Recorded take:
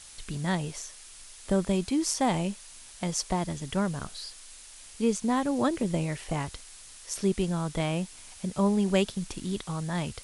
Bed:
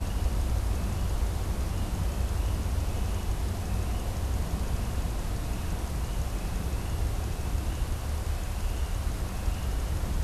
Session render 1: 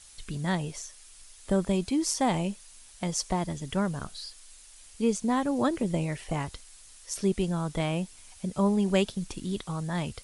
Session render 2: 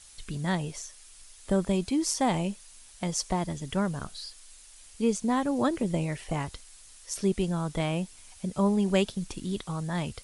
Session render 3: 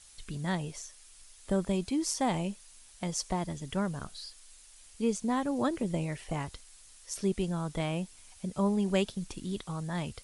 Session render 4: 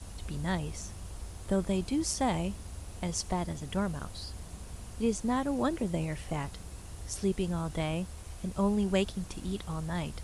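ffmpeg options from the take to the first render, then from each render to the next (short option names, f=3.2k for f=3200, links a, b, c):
-af "afftdn=nr=6:nf=-49"
-af anull
-af "volume=-3.5dB"
-filter_complex "[1:a]volume=-14dB[a];[0:a][a]amix=inputs=2:normalize=0"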